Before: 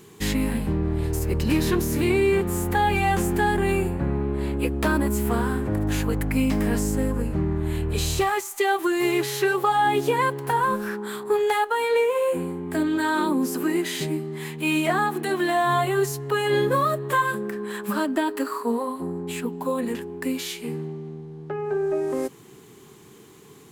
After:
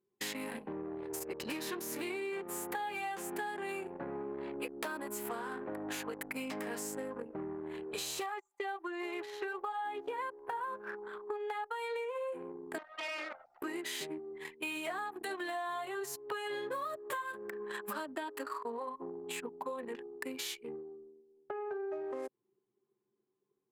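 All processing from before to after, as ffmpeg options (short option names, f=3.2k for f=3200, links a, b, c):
-filter_complex "[0:a]asettb=1/sr,asplit=3[a][b][c];[a]atrim=end=8.264[d];[b]atrim=start=8.26:end=11.71,asetpts=PTS-STARTPTS,afade=t=in:d=0.004:c=qsin,afade=t=out:st=3.446:d=0.004:c=qsin,acrossover=split=6900[e][f];[f]acompressor=threshold=-43dB:ratio=4:attack=1:release=60[g];[e][g]amix=inputs=2:normalize=0,highpass=f=240:p=1,equalizer=f=5.4k:w=0.46:g=-7[h];[c]atrim=start=11.706[i];[d][h]acrossfade=d=0.004:c1=hsin:c2=qsin[j];[j][i]acrossfade=d=0.004:c1=qsin:c2=hsin,asettb=1/sr,asplit=3[k][l][m];[k]atrim=end=12.784[n];[l]atrim=start=12.78:end=13.62,asetpts=PTS-STARTPTS,afade=t=in:d=0.004:c=qsin,afade=t=out:st=0.836:d=0.004:c=qsin,highpass=610,lowpass=3k,aeval=exprs='abs(val(0))':c=same[o];[m]atrim=start=13.616[p];[n][o]acrossfade=d=0.004:c1=hsin:c2=qsin[q];[q][p]acrossfade=d=0.004:c1=qsin:c2=hsin,highpass=460,anlmdn=6.31,acompressor=threshold=-33dB:ratio=6,volume=-3.5dB"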